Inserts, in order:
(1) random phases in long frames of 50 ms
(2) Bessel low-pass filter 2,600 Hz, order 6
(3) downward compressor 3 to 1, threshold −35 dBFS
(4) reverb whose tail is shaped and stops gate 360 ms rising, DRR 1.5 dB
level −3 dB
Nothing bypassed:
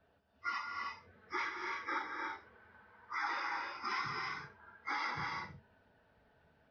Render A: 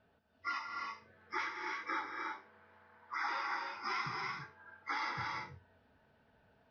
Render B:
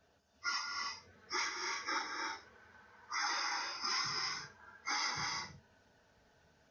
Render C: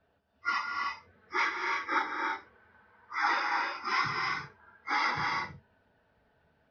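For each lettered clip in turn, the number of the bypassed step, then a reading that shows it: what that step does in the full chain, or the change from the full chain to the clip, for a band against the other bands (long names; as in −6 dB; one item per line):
1, change in momentary loudness spread −1 LU
2, 4 kHz band +12.0 dB
3, average gain reduction 4.5 dB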